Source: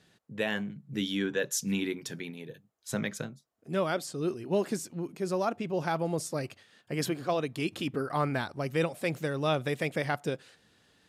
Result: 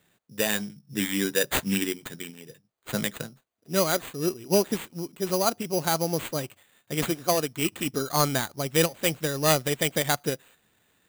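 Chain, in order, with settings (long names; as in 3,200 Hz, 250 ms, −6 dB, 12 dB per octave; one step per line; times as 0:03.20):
sample-rate reduction 5,400 Hz, jitter 0%
high-shelf EQ 4,000 Hz +8.5 dB
expander for the loud parts 1.5 to 1, over −43 dBFS
level +6 dB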